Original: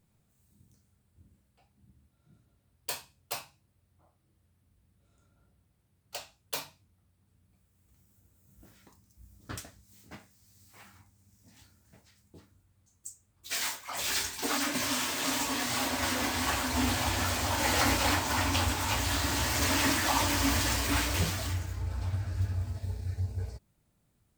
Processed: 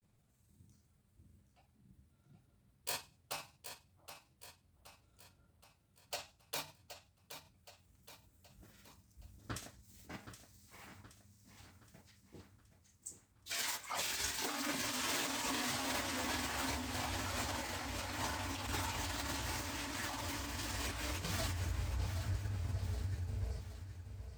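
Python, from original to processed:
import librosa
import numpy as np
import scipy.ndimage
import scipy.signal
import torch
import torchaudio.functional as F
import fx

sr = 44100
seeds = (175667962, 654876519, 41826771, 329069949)

p1 = fx.over_compress(x, sr, threshold_db=-34.0, ratio=-1.0)
p2 = fx.granulator(p1, sr, seeds[0], grain_ms=100.0, per_s=20.0, spray_ms=23.0, spread_st=0)
p3 = p2 + fx.echo_feedback(p2, sr, ms=772, feedback_pct=49, wet_db=-10, dry=0)
y = F.gain(torch.from_numpy(p3), -4.5).numpy()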